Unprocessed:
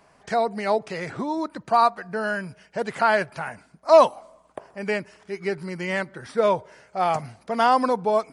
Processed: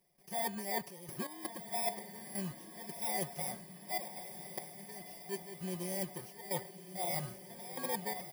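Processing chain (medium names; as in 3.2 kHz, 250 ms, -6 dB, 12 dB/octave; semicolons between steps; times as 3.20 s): bit-reversed sample order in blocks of 32 samples; comb 5.5 ms, depth 78%; reverse; compression 6:1, threshold -27 dBFS, peak gain reduction 19 dB; reverse; trance gate ".xxxx.x.xxx..xx" 83 bpm -12 dB; on a send: echo that smears into a reverb 1247 ms, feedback 50%, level -9.5 dB; on the sum: dynamic bell 890 Hz, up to +4 dB, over -43 dBFS, Q 0.82; trim -8 dB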